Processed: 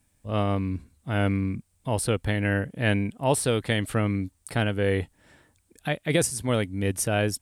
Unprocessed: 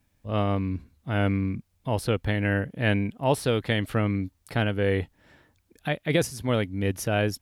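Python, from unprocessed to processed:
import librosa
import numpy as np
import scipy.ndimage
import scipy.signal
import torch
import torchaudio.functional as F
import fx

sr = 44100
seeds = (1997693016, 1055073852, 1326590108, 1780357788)

y = fx.peak_eq(x, sr, hz=8600.0, db=14.0, octaves=0.52)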